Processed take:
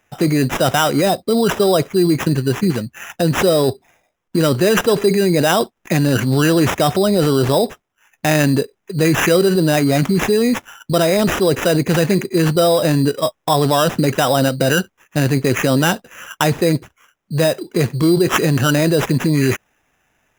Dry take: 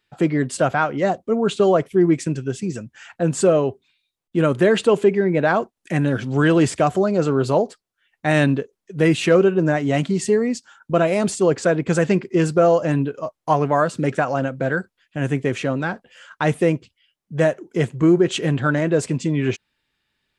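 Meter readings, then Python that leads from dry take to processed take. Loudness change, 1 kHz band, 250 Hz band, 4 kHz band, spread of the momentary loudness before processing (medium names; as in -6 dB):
+3.5 dB, +3.5 dB, +3.5 dB, +11.0 dB, 10 LU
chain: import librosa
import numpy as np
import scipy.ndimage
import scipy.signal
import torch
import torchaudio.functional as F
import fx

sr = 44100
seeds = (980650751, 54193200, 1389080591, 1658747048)

p1 = fx.over_compress(x, sr, threshold_db=-23.0, ratio=-1.0)
p2 = x + (p1 * librosa.db_to_amplitude(2.5))
p3 = fx.sample_hold(p2, sr, seeds[0], rate_hz=4400.0, jitter_pct=0)
y = p3 * librosa.db_to_amplitude(-1.0)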